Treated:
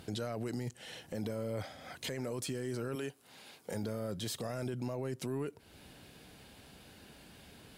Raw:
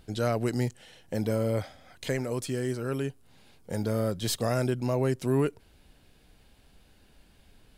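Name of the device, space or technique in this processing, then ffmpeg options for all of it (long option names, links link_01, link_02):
podcast mastering chain: -filter_complex "[0:a]asettb=1/sr,asplit=3[link_01][link_02][link_03];[link_01]atrim=end=2.954[link_04];[link_02]atrim=start=2.95:end=3.74,asetpts=PTS-STARTPTS,afade=type=in:duration=0.004:curve=qsin,afade=type=out:start_time=0.786:duration=0.004:curve=qsin,highpass=frequency=500:poles=1[link_05];[link_03]atrim=start=3.736[link_06];[link_04][link_05]acrossfade=duration=0.004:curve1=hsin:curve2=qsin[link_07];[link_07][link_06]acrossfade=duration=0.004:curve1=qsin:curve2=hsin,highpass=100,deesser=0.5,acompressor=threshold=-41dB:ratio=2.5,alimiter=level_in=12.5dB:limit=-24dB:level=0:latency=1:release=15,volume=-12.5dB,volume=7.5dB" -ar 48000 -c:a libmp3lame -b:a 96k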